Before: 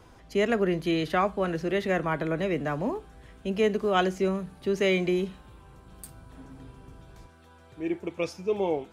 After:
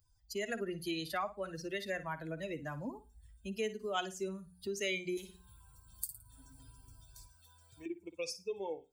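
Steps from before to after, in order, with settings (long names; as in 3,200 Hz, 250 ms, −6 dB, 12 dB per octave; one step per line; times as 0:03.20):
spectral dynamics exaggerated over time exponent 2
low-shelf EQ 250 Hz −5.5 dB
mains-hum notches 60/120/180/240 Hz
flutter between parallel walls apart 9.5 metres, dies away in 0.23 s
automatic gain control gain up to 4 dB
first-order pre-emphasis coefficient 0.8
downward compressor 2 to 1, threshold −59 dBFS, peak gain reduction 16 dB
0:05.17–0:07.86: every bin compressed towards the loudest bin 2 to 1
level +14 dB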